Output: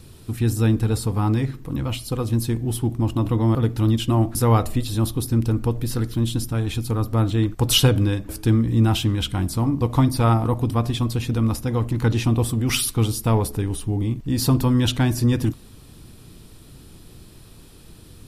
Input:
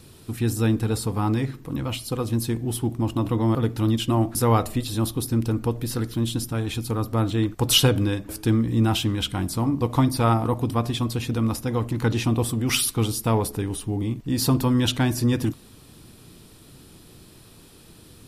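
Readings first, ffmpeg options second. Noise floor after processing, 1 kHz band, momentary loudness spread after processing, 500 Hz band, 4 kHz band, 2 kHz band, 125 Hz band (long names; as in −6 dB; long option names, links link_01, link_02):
−46 dBFS, 0.0 dB, 6 LU, +0.5 dB, 0.0 dB, 0.0 dB, +4.0 dB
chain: -af "lowshelf=frequency=88:gain=11"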